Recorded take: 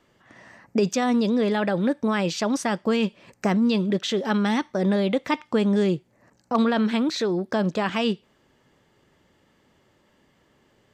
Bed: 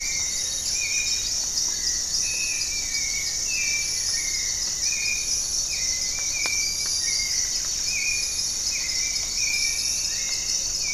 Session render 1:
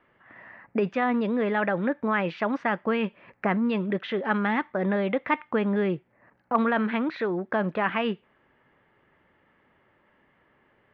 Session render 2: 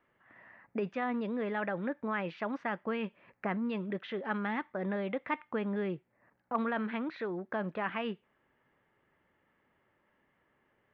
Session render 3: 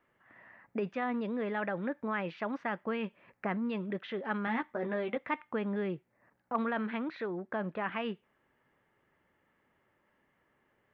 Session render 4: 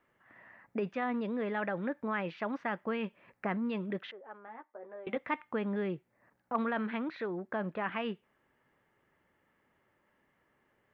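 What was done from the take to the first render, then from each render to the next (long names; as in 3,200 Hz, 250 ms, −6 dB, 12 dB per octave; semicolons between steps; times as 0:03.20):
low-pass filter 2,200 Hz 24 dB per octave; tilt shelving filter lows −5.5 dB, about 820 Hz
level −9 dB
0:04.46–0:05.17: double-tracking delay 13 ms −4.5 dB; 0:07.26–0:07.92: high-frequency loss of the air 94 metres
0:04.11–0:05.07: four-pole ladder band-pass 710 Hz, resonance 20%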